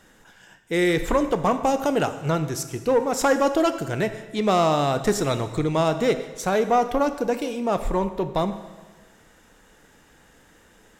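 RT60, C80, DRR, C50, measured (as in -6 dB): 1.3 s, 12.5 dB, 9.5 dB, 11.0 dB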